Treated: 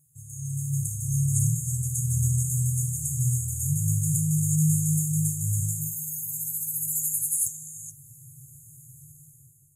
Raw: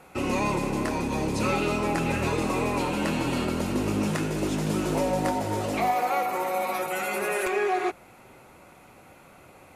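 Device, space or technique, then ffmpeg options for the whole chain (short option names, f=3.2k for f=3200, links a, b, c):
video call: -filter_complex "[0:a]asettb=1/sr,asplit=3[a][b][c];[a]atrim=end=4.144[d];[b]atrim=start=4.14:end=5.61,asetpts=PTS-STARTPTS,afade=t=in:d=0.004:c=qsin,afade=t=out:st=1.466:d=0.004:c=qsin,highpass=f=64:w=0.5412,highpass=f=64:w=1.3066[e];[c]atrim=start=5.606[f];[d][e]acrossfade=d=0.004:c1=hsin:c2=qsin[g];[g][f]acrossfade=d=0.004:c1=qsin:c2=hsin,afftfilt=real='re*(1-between(b*sr/4096,160,6400))':imag='im*(1-between(b*sr/4096,160,6400))':win_size=4096:overlap=0.75,highpass=f=120:w=0.5412,highpass=f=120:w=1.3066,dynaudnorm=f=290:g=5:m=15dB" -ar 48000 -c:a libopus -b:a 32k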